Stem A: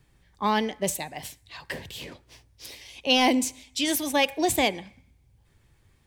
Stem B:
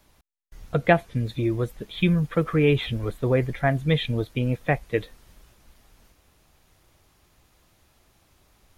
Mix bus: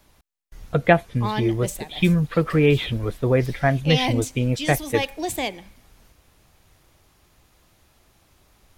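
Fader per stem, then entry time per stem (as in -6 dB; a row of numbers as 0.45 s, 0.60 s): -3.5 dB, +2.5 dB; 0.80 s, 0.00 s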